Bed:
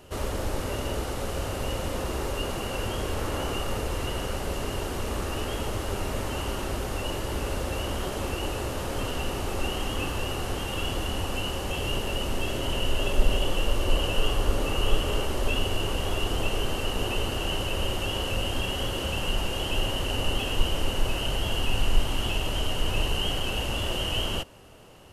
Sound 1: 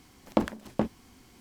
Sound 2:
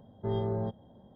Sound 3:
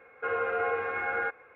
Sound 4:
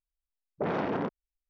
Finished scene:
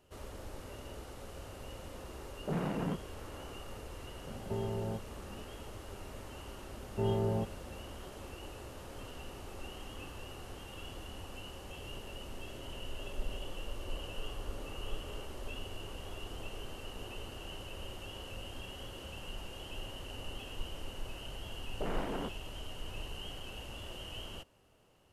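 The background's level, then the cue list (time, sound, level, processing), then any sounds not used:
bed -16.5 dB
1.87 s: add 4 -9 dB + peaking EQ 160 Hz +13.5 dB 0.83 oct
4.27 s: add 2 -5.5 dB + three bands compressed up and down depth 70%
6.74 s: add 2 -0.5 dB
21.20 s: add 4 -8 dB
not used: 1, 3

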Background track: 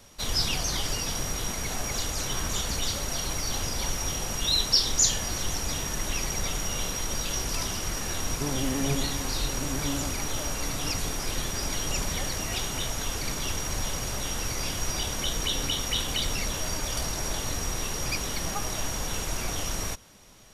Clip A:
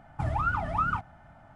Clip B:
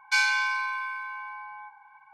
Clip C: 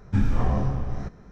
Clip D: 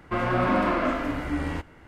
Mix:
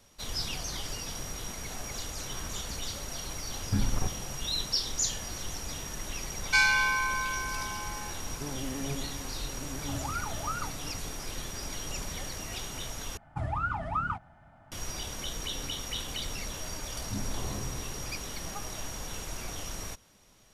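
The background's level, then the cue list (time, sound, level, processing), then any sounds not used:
background track -7.5 dB
3.58 s: add C -4.5 dB + level held to a coarse grid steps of 20 dB
6.41 s: add B
9.69 s: add A -8 dB
13.17 s: replace with A -3.5 dB
16.98 s: add C -9.5 dB + rippled Chebyshev low-pass 1.4 kHz, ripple 6 dB
not used: D

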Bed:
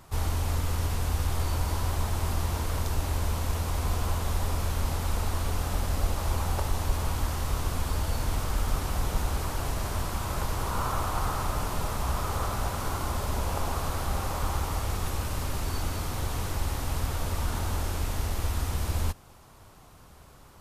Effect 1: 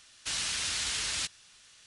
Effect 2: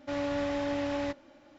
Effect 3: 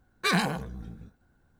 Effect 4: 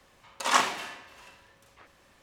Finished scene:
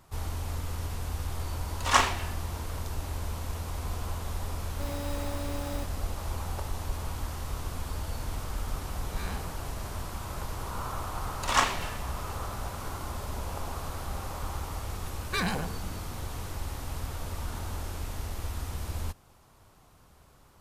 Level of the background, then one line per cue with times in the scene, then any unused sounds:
bed -6 dB
1.40 s: add 4 -5.5 dB + three bands expanded up and down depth 70%
4.72 s: add 2 -7 dB + sample-and-hold 10×
8.93 s: add 3 -13.5 dB + spectral blur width 110 ms
11.03 s: add 4 -1.5 dB
15.09 s: add 3 -3 dB + peak limiter -15.5 dBFS
not used: 1

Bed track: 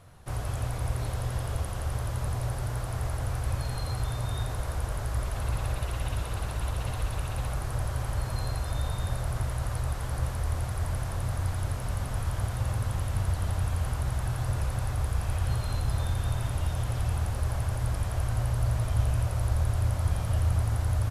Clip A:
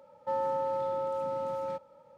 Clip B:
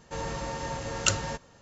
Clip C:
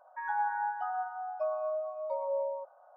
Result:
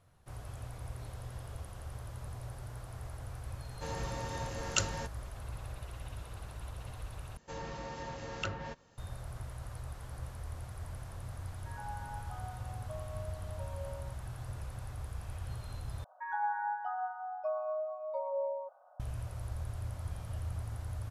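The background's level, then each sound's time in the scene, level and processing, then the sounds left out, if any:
bed track -13 dB
3.70 s: add B -6 dB
7.37 s: replace with B -8 dB + low-pass that closes with the level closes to 2.1 kHz, closed at -25 dBFS
11.49 s: add C -13.5 dB
16.04 s: replace with C -2.5 dB
not used: A

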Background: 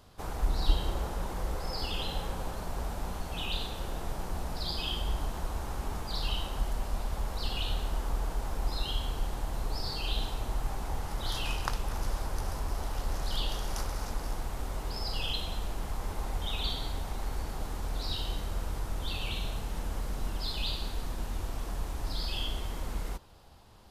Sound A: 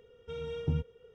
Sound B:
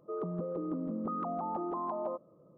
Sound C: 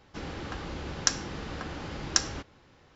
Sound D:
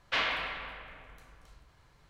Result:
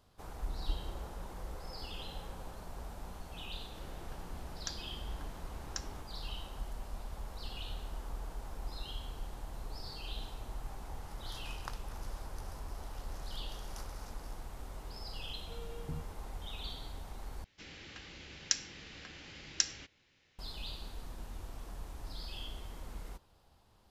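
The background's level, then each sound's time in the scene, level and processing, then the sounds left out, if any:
background -10 dB
3.60 s: add C -17 dB
15.21 s: add A -11 dB
17.44 s: replace with C -16 dB + resonant high shelf 1.6 kHz +10 dB, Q 1.5
not used: B, D

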